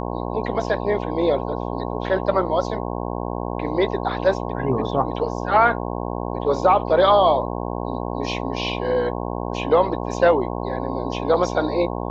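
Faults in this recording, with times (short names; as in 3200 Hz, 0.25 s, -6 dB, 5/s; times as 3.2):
buzz 60 Hz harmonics 18 -27 dBFS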